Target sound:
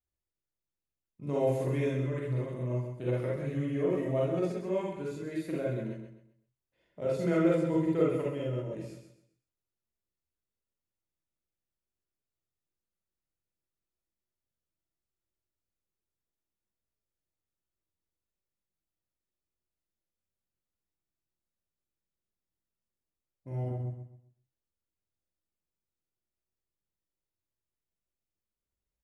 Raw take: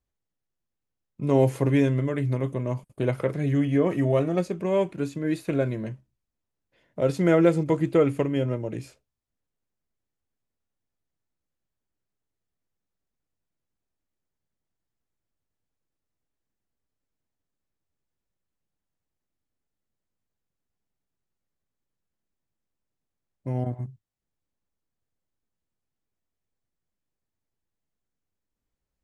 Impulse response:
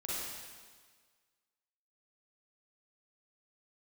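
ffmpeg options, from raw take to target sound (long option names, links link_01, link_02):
-filter_complex "[0:a]aecho=1:1:130|260|390|520:0.422|0.131|0.0405|0.0126[link_01];[1:a]atrim=start_sample=2205,atrim=end_sample=3969[link_02];[link_01][link_02]afir=irnorm=-1:irlink=0,volume=-8dB"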